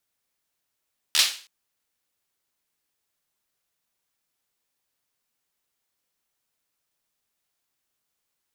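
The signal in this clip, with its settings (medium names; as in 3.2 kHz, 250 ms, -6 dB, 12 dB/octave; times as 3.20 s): hand clap length 0.32 s, apart 13 ms, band 3.6 kHz, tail 0.40 s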